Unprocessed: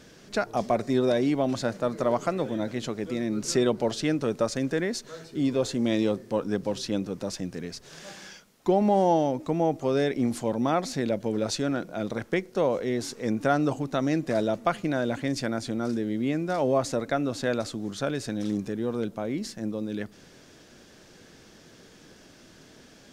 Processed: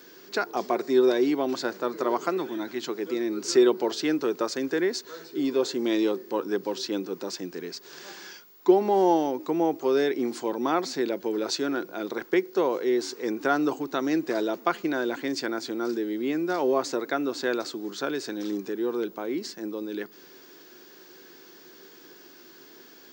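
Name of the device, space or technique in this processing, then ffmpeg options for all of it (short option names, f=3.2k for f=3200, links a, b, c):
old television with a line whistle: -filter_complex "[0:a]highpass=f=210:w=0.5412,highpass=f=210:w=1.3066,equalizer=f=220:t=q:w=4:g=-8,equalizer=f=370:t=q:w=4:g=8,equalizer=f=600:t=q:w=4:g=-7,equalizer=f=990:t=q:w=4:g=4,equalizer=f=1.5k:t=q:w=4:g=3,equalizer=f=4.5k:t=q:w=4:g=4,lowpass=f=7.9k:w=0.5412,lowpass=f=7.9k:w=1.3066,aeval=exprs='val(0)+0.00251*sin(2*PI*15625*n/s)':c=same,asettb=1/sr,asplit=3[a][b][c];[a]atrim=end=2.374[d];[b]atrim=start=2.37:end=2.89,asetpts=PTS-STARTPTS,afade=t=in:d=0.004:c=qsin,afade=t=out:st=0.516:d=0.004:c=qsin,equalizer=f=490:w=3.4:g=-12[e];[c]atrim=start=2.886[f];[d][e]acrossfade=d=0.004:c1=hsin:c2=qsin[g];[g][f]acrossfade=d=0.004:c1=qsin:c2=hsin"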